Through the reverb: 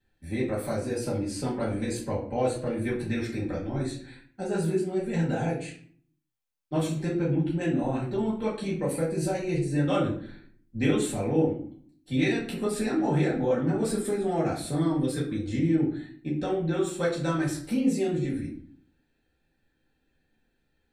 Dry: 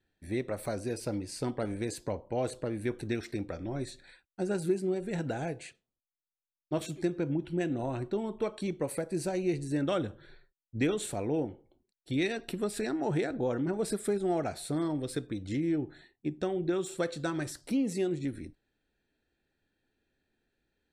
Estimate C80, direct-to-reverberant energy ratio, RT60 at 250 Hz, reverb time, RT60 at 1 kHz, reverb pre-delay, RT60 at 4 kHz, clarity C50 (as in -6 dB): 11.5 dB, -7.5 dB, 0.80 s, 0.50 s, 0.50 s, 4 ms, 0.35 s, 6.5 dB